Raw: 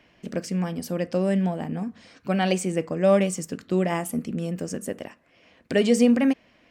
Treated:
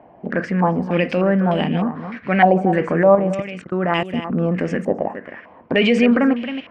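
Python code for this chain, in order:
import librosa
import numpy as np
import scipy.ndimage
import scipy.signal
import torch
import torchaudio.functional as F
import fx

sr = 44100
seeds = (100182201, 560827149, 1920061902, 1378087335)

p1 = fx.highpass(x, sr, hz=97.0, slope=6)
p2 = fx.over_compress(p1, sr, threshold_db=-27.0, ratio=-1.0)
p3 = p1 + (p2 * librosa.db_to_amplitude(-1.0))
p4 = fx.transient(p3, sr, attack_db=-3, sustain_db=3)
p5 = fx.level_steps(p4, sr, step_db=23, at=(3.15, 4.3))
p6 = p5 + fx.echo_single(p5, sr, ms=270, db=-11.0, dry=0)
p7 = fx.filter_held_lowpass(p6, sr, hz=3.3, low_hz=790.0, high_hz=3000.0)
y = p7 * librosa.db_to_amplitude(2.5)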